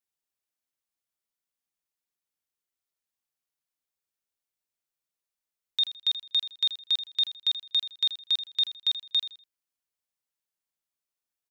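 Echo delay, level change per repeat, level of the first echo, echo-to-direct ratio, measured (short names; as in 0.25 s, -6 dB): 81 ms, -11.0 dB, -13.0 dB, -12.5 dB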